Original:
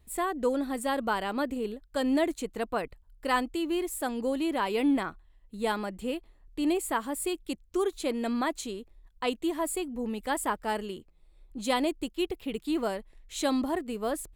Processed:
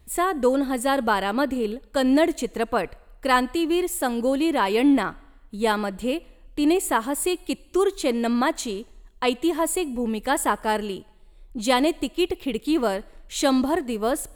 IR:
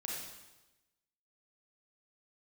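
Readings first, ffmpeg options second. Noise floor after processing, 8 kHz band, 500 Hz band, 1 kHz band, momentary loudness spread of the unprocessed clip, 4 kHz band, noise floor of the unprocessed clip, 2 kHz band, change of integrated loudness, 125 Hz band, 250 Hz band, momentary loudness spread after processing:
-52 dBFS, +7.5 dB, +7.5 dB, +7.5 dB, 9 LU, +7.5 dB, -61 dBFS, +7.5 dB, +7.5 dB, n/a, +7.0 dB, 9 LU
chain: -filter_complex "[0:a]asplit=2[a][b];[1:a]atrim=start_sample=2205,lowshelf=f=370:g=-9.5[c];[b][c]afir=irnorm=-1:irlink=0,volume=-21dB[d];[a][d]amix=inputs=2:normalize=0,volume=7dB"

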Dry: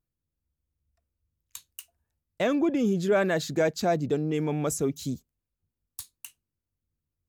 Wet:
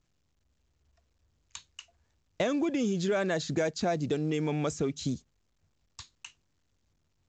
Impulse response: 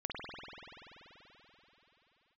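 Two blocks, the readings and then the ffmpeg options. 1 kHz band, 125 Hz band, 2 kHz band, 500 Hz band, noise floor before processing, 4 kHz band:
-4.0 dB, -2.0 dB, -3.5 dB, -4.5 dB, under -85 dBFS, -0.5 dB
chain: -filter_complex "[0:a]acrossover=split=1700|4100[a][b][c];[a]acompressor=threshold=-33dB:ratio=4[d];[b]acompressor=threshold=-48dB:ratio=4[e];[c]acompressor=threshold=-46dB:ratio=4[f];[d][e][f]amix=inputs=3:normalize=0,volume=5dB" -ar 16000 -c:a pcm_mulaw

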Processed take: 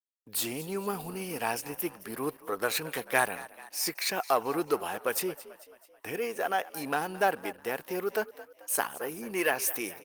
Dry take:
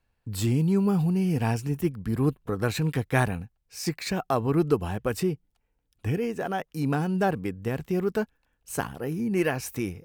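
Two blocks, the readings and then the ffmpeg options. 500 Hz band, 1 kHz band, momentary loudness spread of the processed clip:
-3.0 dB, +1.0 dB, 9 LU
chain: -filter_complex "[0:a]bandreject=f=7.7k:w=8.3,asplit=2[a][b];[b]asoftclip=type=tanh:threshold=-23dB,volume=-6dB[c];[a][c]amix=inputs=2:normalize=0,agate=range=-33dB:threshold=-47dB:ratio=3:detection=peak,highpass=560,highshelf=f=8.4k:g=9.5,asplit=2[d][e];[e]asplit=5[f][g][h][i][j];[f]adelay=219,afreqshift=45,volume=-17dB[k];[g]adelay=438,afreqshift=90,volume=-22.7dB[l];[h]adelay=657,afreqshift=135,volume=-28.4dB[m];[i]adelay=876,afreqshift=180,volume=-34dB[n];[j]adelay=1095,afreqshift=225,volume=-39.7dB[o];[k][l][m][n][o]amix=inputs=5:normalize=0[p];[d][p]amix=inputs=2:normalize=0" -ar 48000 -c:a libopus -b:a 24k

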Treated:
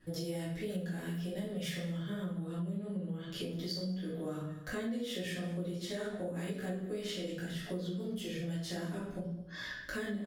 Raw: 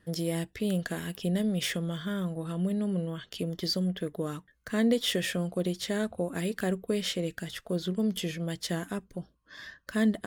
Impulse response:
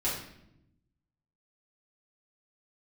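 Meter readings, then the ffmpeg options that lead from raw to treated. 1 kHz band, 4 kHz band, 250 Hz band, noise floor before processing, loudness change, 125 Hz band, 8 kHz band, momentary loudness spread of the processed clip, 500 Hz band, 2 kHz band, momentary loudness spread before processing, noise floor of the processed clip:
-7.0 dB, -8.5 dB, -8.0 dB, -67 dBFS, -7.5 dB, -5.5 dB, -9.5 dB, 3 LU, -7.0 dB, -6.0 dB, 9 LU, -45 dBFS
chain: -filter_complex "[0:a]flanger=delay=16.5:depth=4.4:speed=2.7,aecho=1:1:200:0.126[a];[1:a]atrim=start_sample=2205,afade=t=out:st=0.29:d=0.01,atrim=end_sample=13230[b];[a][b]afir=irnorm=-1:irlink=0,acompressor=threshold=-37dB:ratio=5"

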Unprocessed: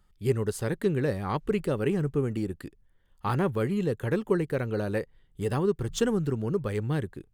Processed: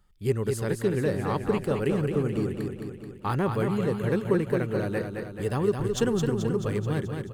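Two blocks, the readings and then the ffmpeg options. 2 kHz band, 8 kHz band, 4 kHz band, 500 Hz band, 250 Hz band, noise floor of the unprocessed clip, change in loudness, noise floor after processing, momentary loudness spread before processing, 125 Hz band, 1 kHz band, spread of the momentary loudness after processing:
+1.5 dB, +1.5 dB, +1.5 dB, +1.5 dB, +1.5 dB, -63 dBFS, +1.5 dB, -43 dBFS, 6 LU, +1.5 dB, +1.5 dB, 6 LU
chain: -af "aecho=1:1:216|432|648|864|1080|1296|1512|1728:0.531|0.313|0.185|0.109|0.0643|0.038|0.0224|0.0132"

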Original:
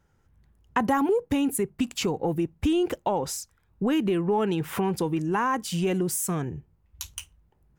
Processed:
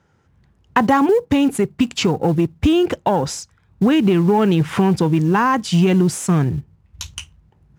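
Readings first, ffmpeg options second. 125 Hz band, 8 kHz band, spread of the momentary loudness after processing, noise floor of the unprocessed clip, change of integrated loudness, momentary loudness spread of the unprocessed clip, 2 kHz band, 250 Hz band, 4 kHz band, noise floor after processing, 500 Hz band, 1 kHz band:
+13.0 dB, +3.0 dB, 13 LU, -67 dBFS, +9.5 dB, 12 LU, +9.0 dB, +10.0 dB, +9.0 dB, -59 dBFS, +8.0 dB, +8.5 dB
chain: -filter_complex "[0:a]asubboost=boost=2.5:cutoff=210,aeval=exprs='0.266*(cos(1*acos(clip(val(0)/0.266,-1,1)))-cos(1*PI/2))+0.0075*(cos(8*acos(clip(val(0)/0.266,-1,1)))-cos(8*PI/2))':c=same,highpass=100,lowpass=6.3k,asplit=2[a][b];[b]acrusher=bits=5:mode=log:mix=0:aa=0.000001,volume=-9dB[c];[a][c]amix=inputs=2:normalize=0,volume=6.5dB"

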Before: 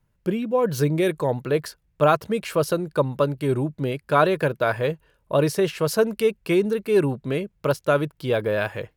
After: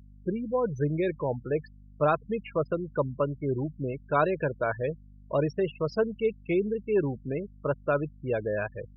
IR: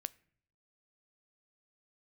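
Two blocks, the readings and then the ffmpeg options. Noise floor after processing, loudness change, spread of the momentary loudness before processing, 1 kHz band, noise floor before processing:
-51 dBFS, -6.5 dB, 6 LU, -6.5 dB, -68 dBFS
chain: -filter_complex "[0:a]asplit=2[a][b];[1:a]atrim=start_sample=2205,asetrate=61740,aresample=44100,lowpass=6.6k[c];[b][c]afir=irnorm=-1:irlink=0,volume=-3dB[d];[a][d]amix=inputs=2:normalize=0,afftfilt=real='re*gte(hypot(re,im),0.0891)':imag='im*gte(hypot(re,im),0.0891)':win_size=1024:overlap=0.75,aeval=exprs='val(0)+0.00891*(sin(2*PI*50*n/s)+sin(2*PI*2*50*n/s)/2+sin(2*PI*3*50*n/s)/3+sin(2*PI*4*50*n/s)/4+sin(2*PI*5*50*n/s)/5)':c=same,volume=-9dB"

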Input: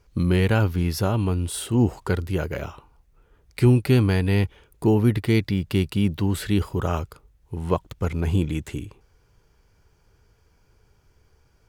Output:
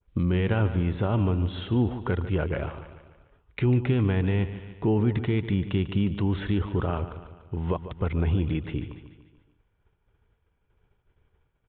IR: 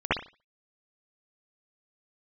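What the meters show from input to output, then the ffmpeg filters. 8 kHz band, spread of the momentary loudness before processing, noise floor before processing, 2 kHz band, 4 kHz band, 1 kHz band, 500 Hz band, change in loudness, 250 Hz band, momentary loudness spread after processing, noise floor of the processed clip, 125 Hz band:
under -40 dB, 14 LU, -62 dBFS, -4.5 dB, -6.5 dB, -3.5 dB, -4.0 dB, -3.5 dB, -3.5 dB, 11 LU, -72 dBFS, -3.0 dB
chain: -filter_complex "[0:a]agate=range=-33dB:threshold=-51dB:ratio=3:detection=peak,alimiter=limit=-16dB:level=0:latency=1:release=85,asplit=2[a][b];[b]aecho=0:1:146|292|438|584|730:0.237|0.121|0.0617|0.0315|0.016[c];[a][c]amix=inputs=2:normalize=0,aresample=8000,aresample=44100,adynamicequalizer=threshold=0.00794:dfrequency=1700:dqfactor=0.7:tfrequency=1700:tqfactor=0.7:attack=5:release=100:ratio=0.375:range=2:mode=cutabove:tftype=highshelf"

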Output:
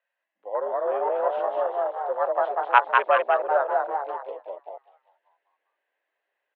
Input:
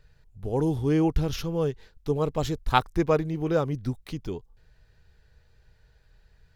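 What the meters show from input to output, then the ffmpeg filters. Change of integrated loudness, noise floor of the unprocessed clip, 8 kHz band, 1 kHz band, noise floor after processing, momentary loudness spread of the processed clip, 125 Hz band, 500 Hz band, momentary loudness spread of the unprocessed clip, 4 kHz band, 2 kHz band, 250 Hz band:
+3.0 dB, -62 dBFS, under -30 dB, +9.0 dB, -83 dBFS, 16 LU, under -40 dB, +3.5 dB, 12 LU, -4.5 dB, +10.5 dB, -21.5 dB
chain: -filter_complex "[0:a]asplit=8[a][b][c][d][e][f][g][h];[b]adelay=197,afreqshift=98,volume=-3dB[i];[c]adelay=394,afreqshift=196,volume=-8.7dB[j];[d]adelay=591,afreqshift=294,volume=-14.4dB[k];[e]adelay=788,afreqshift=392,volume=-20dB[l];[f]adelay=985,afreqshift=490,volume=-25.7dB[m];[g]adelay=1182,afreqshift=588,volume=-31.4dB[n];[h]adelay=1379,afreqshift=686,volume=-37.1dB[o];[a][i][j][k][l][m][n][o]amix=inputs=8:normalize=0,afwtdn=0.0282,highpass=f=500:t=q:w=0.5412,highpass=f=500:t=q:w=1.307,lowpass=f=3.1k:t=q:w=0.5176,lowpass=f=3.1k:t=q:w=0.7071,lowpass=f=3.1k:t=q:w=1.932,afreqshift=88,volume=5dB"

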